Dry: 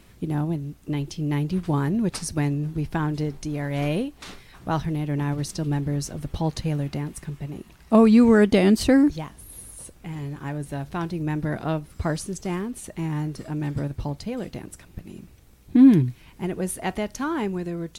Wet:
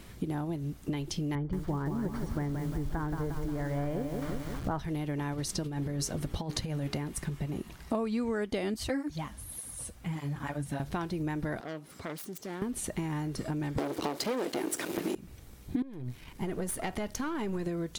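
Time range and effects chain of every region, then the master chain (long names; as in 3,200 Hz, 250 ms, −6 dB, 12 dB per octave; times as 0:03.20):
0:01.35–0:04.79: Savitzky-Golay smoothing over 41 samples + low-shelf EQ 110 Hz +11 dB + feedback echo at a low word length 176 ms, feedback 55%, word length 7 bits, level −7 dB
0:05.64–0:06.98: low-shelf EQ 93 Hz −4 dB + mains-hum notches 60/120/180/240/300/360/420 Hz + compressor whose output falls as the input rises −28 dBFS, ratio −0.5
0:08.74–0:10.80: parametric band 390 Hz −9 dB 0.49 octaves + through-zero flanger with one copy inverted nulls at 1.7 Hz, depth 7.7 ms
0:11.60–0:12.62: phase distortion by the signal itself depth 0.34 ms + high-pass filter 220 Hz + downward compressor 2 to 1, threshold −49 dBFS
0:13.78–0:15.15: leveller curve on the samples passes 5 + high-pass with resonance 330 Hz, resonance Q 2.1
0:15.82–0:17.67: gain on one half-wave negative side −7 dB + downward compressor 10 to 1, threshold −28 dBFS
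whole clip: notch filter 2,600 Hz, Q 22; dynamic equaliser 170 Hz, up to −7 dB, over −32 dBFS, Q 0.96; downward compressor 6 to 1, threshold −33 dBFS; level +3 dB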